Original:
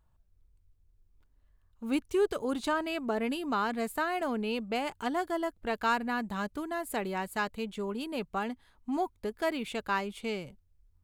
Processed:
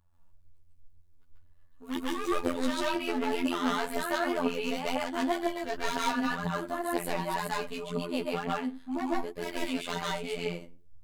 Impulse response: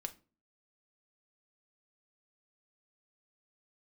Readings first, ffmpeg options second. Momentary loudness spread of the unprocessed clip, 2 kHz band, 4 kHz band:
7 LU, +0.5 dB, +4.0 dB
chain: -filter_complex "[0:a]aeval=exprs='0.0501*(abs(mod(val(0)/0.0501+3,4)-2)-1)':channel_layout=same,asplit=2[link_01][link_02];[1:a]atrim=start_sample=2205,adelay=140[link_03];[link_02][link_03]afir=irnorm=-1:irlink=0,volume=6dB[link_04];[link_01][link_04]amix=inputs=2:normalize=0,afftfilt=real='hypot(re,im)*cos(PI*b)':imag='0':win_size=2048:overlap=0.75,aphaser=in_gain=1:out_gain=1:delay=4.6:decay=0.5:speed=2:type=triangular"

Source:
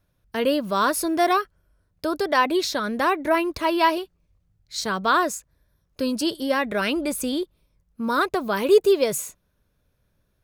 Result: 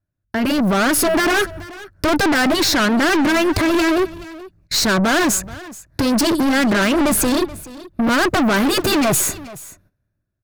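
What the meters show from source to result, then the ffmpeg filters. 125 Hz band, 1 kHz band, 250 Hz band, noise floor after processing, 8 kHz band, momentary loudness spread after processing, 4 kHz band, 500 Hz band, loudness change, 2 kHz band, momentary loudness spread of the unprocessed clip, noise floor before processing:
+15.5 dB, +2.0 dB, +9.5 dB, −74 dBFS, +12.0 dB, 16 LU, +9.0 dB, +2.0 dB, +6.0 dB, +8.5 dB, 11 LU, −70 dBFS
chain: -filter_complex "[0:a]bandreject=frequency=3200:width=6.9,afftfilt=real='re*lt(hypot(re,im),0.562)':imag='im*lt(hypot(re,im),0.562)':win_size=1024:overlap=0.75,agate=range=-30dB:threshold=-55dB:ratio=16:detection=peak,lowshelf=frequency=400:width_type=q:width=3:gain=6,asplit=2[link_01][link_02];[link_02]acompressor=threshold=-29dB:ratio=4,volume=2.5dB[link_03];[link_01][link_03]amix=inputs=2:normalize=0,alimiter=limit=-14dB:level=0:latency=1:release=76,dynaudnorm=framelen=120:gausssize=11:maxgain=13dB,equalizer=frequency=100:width_type=o:width=0.67:gain=9,equalizer=frequency=630:width_type=o:width=0.67:gain=12,equalizer=frequency=1600:width_type=o:width=0.67:gain=9,aeval=exprs='(tanh(7.08*val(0)+0.2)-tanh(0.2))/7.08':channel_layout=same,aecho=1:1:428:0.119,volume=2.5dB"

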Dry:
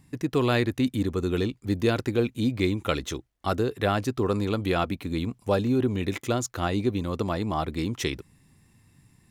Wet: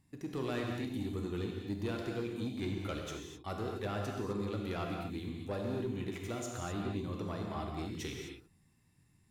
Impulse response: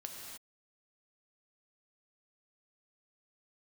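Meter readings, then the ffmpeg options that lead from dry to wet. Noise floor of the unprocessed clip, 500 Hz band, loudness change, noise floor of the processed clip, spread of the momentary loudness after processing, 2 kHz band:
−62 dBFS, −12.0 dB, −11.5 dB, −69 dBFS, 5 LU, −12.5 dB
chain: -filter_complex "[0:a]asoftclip=type=tanh:threshold=-17.5dB[link_01];[1:a]atrim=start_sample=2205,afade=type=out:start_time=0.34:duration=0.01,atrim=end_sample=15435,asetrate=48510,aresample=44100[link_02];[link_01][link_02]afir=irnorm=-1:irlink=0,volume=-7dB"

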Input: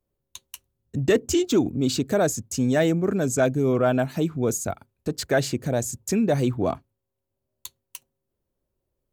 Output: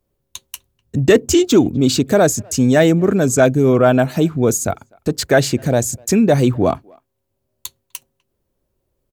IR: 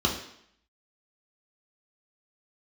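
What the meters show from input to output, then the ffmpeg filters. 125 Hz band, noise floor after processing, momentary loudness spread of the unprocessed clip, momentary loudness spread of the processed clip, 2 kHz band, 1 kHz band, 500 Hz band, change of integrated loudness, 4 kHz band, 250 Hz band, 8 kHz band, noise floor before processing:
+8.5 dB, −73 dBFS, 14 LU, 14 LU, +8.5 dB, +8.5 dB, +8.5 dB, +8.5 dB, +8.5 dB, +8.5 dB, +8.5 dB, −82 dBFS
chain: -filter_complex "[0:a]asplit=2[link_01][link_02];[link_02]adelay=250,highpass=300,lowpass=3400,asoftclip=type=hard:threshold=-17.5dB,volume=-28dB[link_03];[link_01][link_03]amix=inputs=2:normalize=0,volume=8.5dB"

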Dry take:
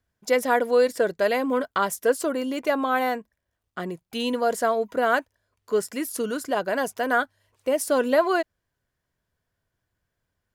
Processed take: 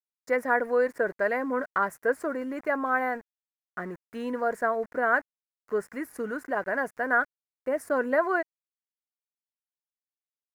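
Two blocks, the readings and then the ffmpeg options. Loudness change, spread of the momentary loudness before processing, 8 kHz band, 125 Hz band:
−4.0 dB, 11 LU, −17.0 dB, can't be measured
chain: -af "aeval=exprs='val(0)*gte(abs(val(0)),0.0112)':channel_layout=same,highshelf=frequency=2400:width_type=q:width=3:gain=-10.5,volume=-5.5dB"

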